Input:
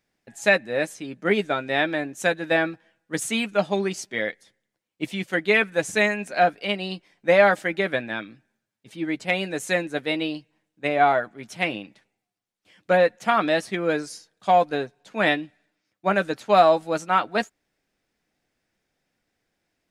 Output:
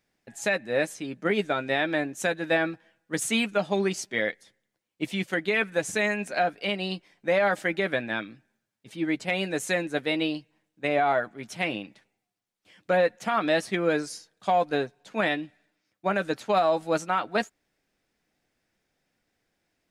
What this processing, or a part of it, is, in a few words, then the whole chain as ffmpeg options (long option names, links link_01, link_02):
stacked limiters: -af "alimiter=limit=-9.5dB:level=0:latency=1:release=227,alimiter=limit=-13.5dB:level=0:latency=1:release=79"